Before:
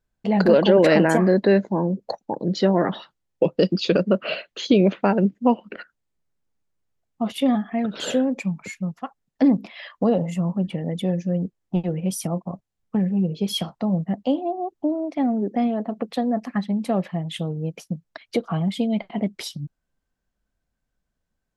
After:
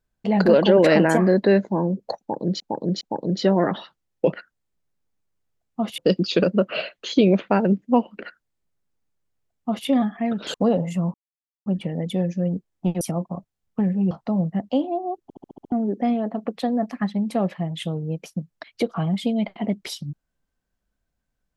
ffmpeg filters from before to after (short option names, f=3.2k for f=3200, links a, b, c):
-filter_complex "[0:a]asplit=16[a][b][c][d][e][f][g][h][i][j][k][l][m][n][o][p];[a]atrim=end=2.602[q];[b]atrim=start=2.188:end=2.602[r];[c]atrim=start=2.188:end=3.512[s];[d]atrim=start=5.748:end=7.402[t];[e]atrim=start=3.508:end=8.072[u];[f]atrim=start=9.948:end=10.55,asetpts=PTS-STARTPTS,afade=t=out:st=0.598:d=0.004:c=hsin,apad=pad_dur=0.52[v];[g]atrim=start=10.55:end=11.902,asetpts=PTS-STARTPTS,afade=t=in:d=0.004:c=hsin[w];[h]atrim=start=12.168:end=13.272[x];[i]atrim=start=13.648:end=14.842[y];[j]atrim=start=14.768:end=14.842[z];[k]atrim=start=14.768:end=14.842[aa];[l]atrim=start=14.768:end=14.842[ab];[m]atrim=start=14.768:end=14.842[ac];[n]atrim=start=14.768:end=14.842[ad];[o]atrim=start=14.768:end=14.842[ae];[p]atrim=start=15.258[af];[q][r]acrossfade=d=0.004:c1=hsin:c2=hsin[ag];[ag][s]acrossfade=d=0.004:c1=hsin:c2=hsin[ah];[ah][t]acrossfade=d=0.004:c1=hsin:c2=hsin[ai];[ai][u]acrossfade=d=0.004:c1=hsin:c2=hsin[aj];[v][w]concat=n=2:v=0:a=1[ak];[aj][ak]acrossfade=d=0.004:c1=hsin:c2=hsin[al];[al][x]acrossfade=d=0.004:c1=hsin:c2=hsin[am];[am][y]acrossfade=d=0.004:c1=hsin:c2=hsin[an];[an][z]acrossfade=d=0.004:c1=hsin:c2=hsin[ao];[ao][aa]acrossfade=d=0.004:c1=hsin:c2=hsin[ap];[ap][ab]acrossfade=d=0.004:c1=hsin:c2=hsin[aq];[aq][ac]acrossfade=d=0.004:c1=hsin:c2=hsin[ar];[ar][ad]acrossfade=d=0.004:c1=hsin:c2=hsin[as];[as][ae]acrossfade=d=0.004:c1=hsin:c2=hsin[at];[at][af]acrossfade=d=0.004:c1=hsin:c2=hsin"